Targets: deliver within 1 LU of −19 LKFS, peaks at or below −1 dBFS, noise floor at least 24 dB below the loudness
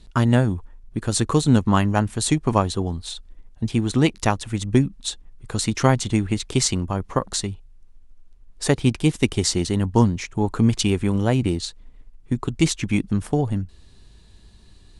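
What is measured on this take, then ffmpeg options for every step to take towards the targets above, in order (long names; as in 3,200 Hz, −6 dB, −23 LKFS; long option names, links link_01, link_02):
integrated loudness −22.0 LKFS; sample peak −2.0 dBFS; target loudness −19.0 LKFS
→ -af "volume=3dB,alimiter=limit=-1dB:level=0:latency=1"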